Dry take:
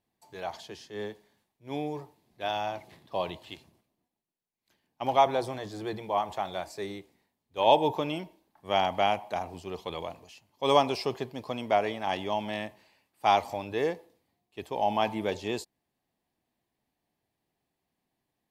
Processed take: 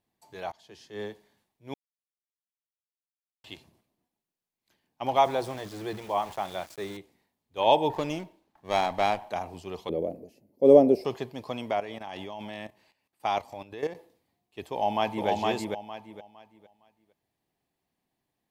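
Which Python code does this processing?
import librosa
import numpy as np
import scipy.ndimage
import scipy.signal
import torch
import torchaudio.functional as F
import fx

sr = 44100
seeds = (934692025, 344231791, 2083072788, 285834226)

y = fx.sample_gate(x, sr, floor_db=-43.0, at=(5.16, 6.97))
y = fx.running_max(y, sr, window=5, at=(7.9, 9.3))
y = fx.curve_eq(y, sr, hz=(120.0, 220.0, 560.0, 1000.0, 2100.0, 3200.0, 4900.0, 7100.0, 12000.0), db=(0, 12, 10, -18, -13, -21, -13, -14, -2), at=(9.89, 11.05))
y = fx.level_steps(y, sr, step_db=13, at=(11.71, 13.95))
y = fx.echo_throw(y, sr, start_s=14.71, length_s=0.57, ms=460, feedback_pct=25, wet_db=-1.5)
y = fx.edit(y, sr, fx.fade_in_from(start_s=0.52, length_s=0.48, floor_db=-23.5),
    fx.silence(start_s=1.74, length_s=1.7), tone=tone)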